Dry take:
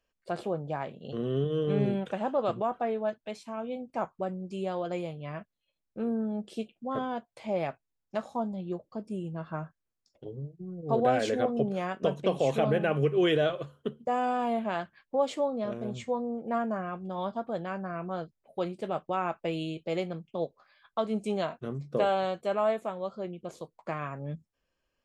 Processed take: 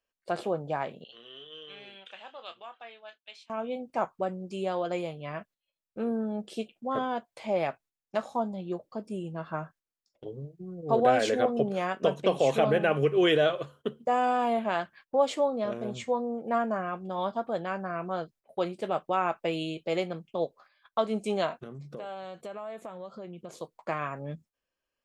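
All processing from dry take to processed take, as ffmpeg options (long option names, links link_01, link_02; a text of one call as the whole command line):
ffmpeg -i in.wav -filter_complex "[0:a]asettb=1/sr,asplit=3[link_01][link_02][link_03];[link_01]atrim=end=1.044[link_04];[link_02]atrim=start=1.04:end=3.5,asetpts=PTS-STARTPTS,afade=type=in:duration=0.004:curve=qsin,afade=type=out:start_time=2.456:duration=0.004:curve=qsin,bandpass=frequency=3200:width_type=q:width=2.2,asplit=2[link_05][link_06];[link_06]adelay=26,volume=-11dB[link_07];[link_05][link_07]amix=inputs=2:normalize=0,atrim=end_sample=108486[link_08];[link_03]atrim=start=3.496[link_09];[link_04][link_08]acrossfade=duration=0.004:curve1=hsin:curve2=qsin[link_10];[link_10][link_09]acrossfade=duration=0.004:curve1=qsin:curve2=hsin,asettb=1/sr,asplit=3[link_11][link_12][link_13];[link_11]atrim=end=21.634[link_14];[link_12]atrim=start=21.63:end=23.55,asetpts=PTS-STARTPTS,afade=type=in:duration=0.004:curve=qsin,afade=type=out:start_time=1.916:duration=0.004:curve=qsin,acompressor=threshold=-40dB:ratio=6:attack=3.2:release=140:knee=1:detection=peak,equalizer=frequency=160:width_type=o:width=0.93:gain=4.5[link_15];[link_13]atrim=start=23.546[link_16];[link_14][link_15]acrossfade=duration=0.004:curve1=hsin:curve2=qsin[link_17];[link_17][link_16]acrossfade=duration=0.004:curve1=qsin:curve2=hsin,lowshelf=frequency=240:gain=-8.5,agate=range=-9dB:threshold=-58dB:ratio=16:detection=peak,volume=4dB" out.wav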